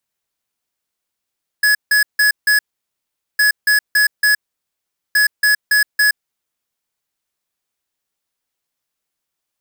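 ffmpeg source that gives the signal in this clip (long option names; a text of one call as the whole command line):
ffmpeg -f lavfi -i "aevalsrc='0.237*(2*lt(mod(1690*t,1),0.5)-1)*clip(min(mod(mod(t,1.76),0.28),0.12-mod(mod(t,1.76),0.28))/0.005,0,1)*lt(mod(t,1.76),1.12)':duration=5.28:sample_rate=44100" out.wav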